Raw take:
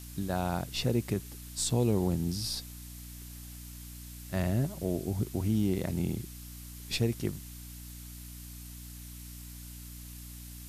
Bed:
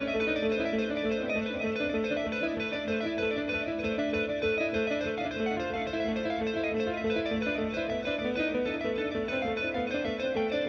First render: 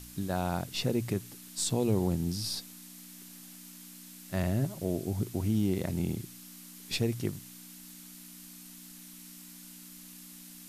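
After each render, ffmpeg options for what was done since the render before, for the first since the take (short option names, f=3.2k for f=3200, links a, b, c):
-af "bandreject=f=60:t=h:w=4,bandreject=f=120:t=h:w=4"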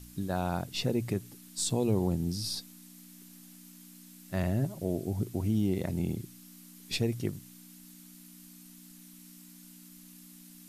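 -af "afftdn=nr=6:nf=-50"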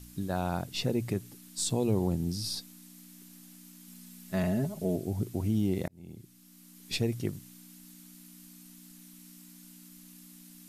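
-filter_complex "[0:a]asettb=1/sr,asplit=3[a][b][c];[a]atrim=end=3.874[d];[b]atrim=start=3.87:end=4.96,asetpts=PTS-STARTPTS,afade=t=in:d=0.004:c=qsin,afade=t=out:st=1.086:d=0.004:c=qsin,aecho=1:1:4.7:0.65,atrim=end_sample=48069[e];[c]atrim=start=4.956[f];[d][e]acrossfade=d=0.004:c1=hsin:c2=qsin[g];[g][f]acrossfade=d=0.004:c1=qsin:c2=hsin,asplit=2[h][i];[h]atrim=end=5.88,asetpts=PTS-STARTPTS,afade=t=out:st=5.876:d=0.004:c=hsin[j];[i]atrim=start=5.88,asetpts=PTS-STARTPTS,afade=t=in:d=1.06[k];[j][k]concat=n=2:v=0:a=1"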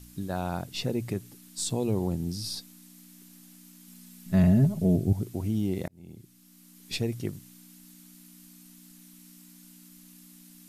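-filter_complex "[0:a]asettb=1/sr,asplit=3[a][b][c];[a]atrim=end=4.264[d];[b]atrim=start=4.26:end=5.13,asetpts=PTS-STARTPTS,afade=t=in:d=0.004:c=qsin,afade=t=out:st=0.866:d=0.004:c=qsin,bass=f=250:g=13,treble=f=4k:g=-1[e];[c]atrim=start=5.126[f];[d][e]acrossfade=d=0.004:c1=hsin:c2=qsin[g];[g][f]acrossfade=d=0.004:c1=qsin:c2=hsin"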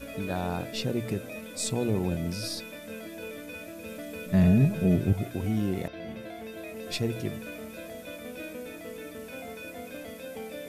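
-filter_complex "[1:a]volume=-10dB[a];[0:a][a]amix=inputs=2:normalize=0"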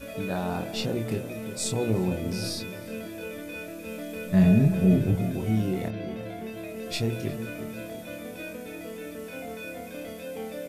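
-filter_complex "[0:a]asplit=2[a][b];[b]adelay=27,volume=-4.5dB[c];[a][c]amix=inputs=2:normalize=0,asplit=2[d][e];[e]adelay=355,lowpass=f=980:p=1,volume=-11dB,asplit=2[f][g];[g]adelay=355,lowpass=f=980:p=1,volume=0.44,asplit=2[h][i];[i]adelay=355,lowpass=f=980:p=1,volume=0.44,asplit=2[j][k];[k]adelay=355,lowpass=f=980:p=1,volume=0.44,asplit=2[l][m];[m]adelay=355,lowpass=f=980:p=1,volume=0.44[n];[d][f][h][j][l][n]amix=inputs=6:normalize=0"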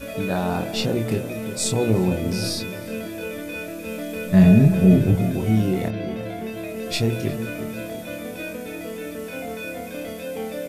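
-af "volume=6dB"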